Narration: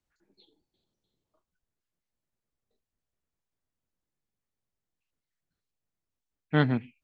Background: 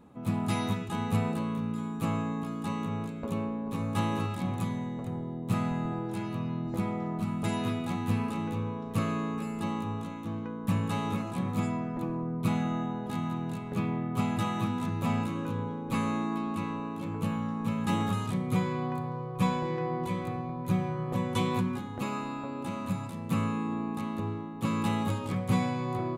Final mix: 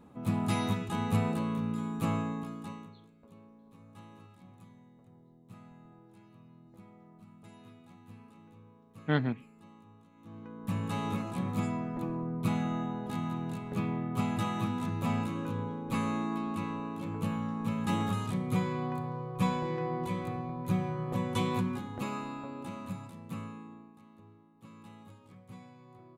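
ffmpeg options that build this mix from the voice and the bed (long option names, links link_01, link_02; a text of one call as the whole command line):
ffmpeg -i stem1.wav -i stem2.wav -filter_complex "[0:a]adelay=2550,volume=-4.5dB[link_01];[1:a]volume=20.5dB,afade=type=out:start_time=2.12:duration=0.83:silence=0.0749894,afade=type=in:start_time=10.12:duration=0.93:silence=0.0891251,afade=type=out:start_time=21.9:duration=2.03:silence=0.0891251[link_02];[link_01][link_02]amix=inputs=2:normalize=0" out.wav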